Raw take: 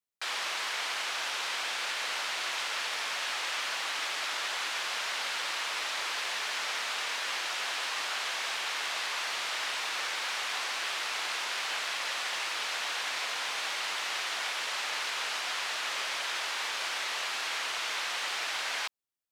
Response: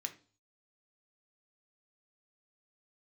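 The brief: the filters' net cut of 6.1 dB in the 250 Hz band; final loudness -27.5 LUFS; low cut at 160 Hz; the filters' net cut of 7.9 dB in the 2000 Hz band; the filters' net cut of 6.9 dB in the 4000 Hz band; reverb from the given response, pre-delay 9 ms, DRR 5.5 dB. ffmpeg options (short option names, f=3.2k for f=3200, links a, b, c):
-filter_complex "[0:a]highpass=160,equalizer=f=250:t=o:g=-8.5,equalizer=f=2k:t=o:g=-8.5,equalizer=f=4k:t=o:g=-6,asplit=2[a][b];[1:a]atrim=start_sample=2205,adelay=9[c];[b][c]afir=irnorm=-1:irlink=0,volume=-4dB[d];[a][d]amix=inputs=2:normalize=0,volume=9dB"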